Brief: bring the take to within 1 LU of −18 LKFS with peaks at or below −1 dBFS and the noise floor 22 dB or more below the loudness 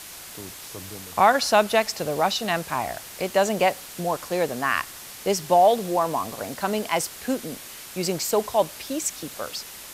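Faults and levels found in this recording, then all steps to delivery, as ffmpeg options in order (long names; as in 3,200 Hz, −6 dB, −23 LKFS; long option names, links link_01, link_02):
background noise floor −41 dBFS; target noise floor −46 dBFS; integrated loudness −24.0 LKFS; sample peak −4.5 dBFS; target loudness −18.0 LKFS
→ -af "afftdn=noise_reduction=6:noise_floor=-41"
-af "volume=6dB,alimiter=limit=-1dB:level=0:latency=1"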